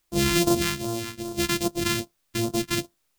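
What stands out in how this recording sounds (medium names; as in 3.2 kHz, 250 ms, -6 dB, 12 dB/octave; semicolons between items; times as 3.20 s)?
a buzz of ramps at a fixed pitch in blocks of 128 samples; phasing stages 2, 2.5 Hz, lowest notch 580–2000 Hz; a quantiser's noise floor 12-bit, dither triangular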